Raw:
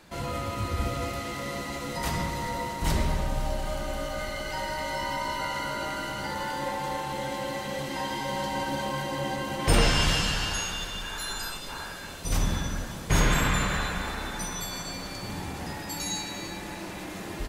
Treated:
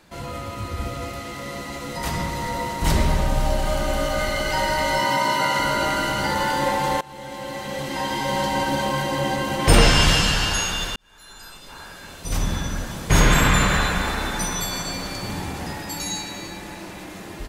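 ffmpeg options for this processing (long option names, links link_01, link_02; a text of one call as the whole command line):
ffmpeg -i in.wav -filter_complex "[0:a]asettb=1/sr,asplit=3[link_01][link_02][link_03];[link_01]atrim=end=5.004[link_04];[link_02]atrim=start=5:end=5.59,asetpts=PTS-STARTPTS,afade=type=in:duration=0.004:curve=qsin,afade=type=out:start_time=0.586:duration=0.004:curve=qsin,highpass=frequency=110:width=0.5412,highpass=frequency=110:width=1.3066[link_05];[link_03]atrim=start=5.586[link_06];[link_04][link_05]acrossfade=duration=0.004:curve1=hsin:curve2=qsin[link_07];[link_07][link_06]acrossfade=duration=0.004:curve1=qsin:curve2=hsin,asplit=3[link_08][link_09][link_10];[link_08]atrim=end=7.01,asetpts=PTS-STARTPTS,afade=type=out:start_time=7.006:duration=0.004:curve=hsin:silence=0.0891251[link_11];[link_09]atrim=start=7.01:end=10.96,asetpts=PTS-STARTPTS,afade=type=in:duration=1.36:silence=0.0891251,afade=type=out:start_time=3.946:duration=0.004:curve=hsin[link_12];[link_10]atrim=start=10.96,asetpts=PTS-STARTPTS,afade=type=in:duration=2.71[link_13];[link_11][link_12][link_13]concat=n=3:v=0:a=1,dynaudnorm=framelen=660:gausssize=9:maxgain=11.5dB" out.wav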